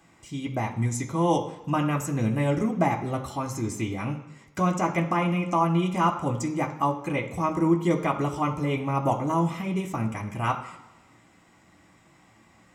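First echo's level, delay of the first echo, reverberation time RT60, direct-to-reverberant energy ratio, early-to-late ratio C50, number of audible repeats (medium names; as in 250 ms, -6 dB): no echo, no echo, 1.1 s, 0.0 dB, 10.5 dB, no echo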